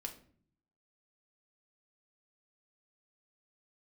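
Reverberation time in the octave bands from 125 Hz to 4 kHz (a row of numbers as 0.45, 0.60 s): 0.95, 0.85, 0.60, 0.45, 0.40, 0.35 s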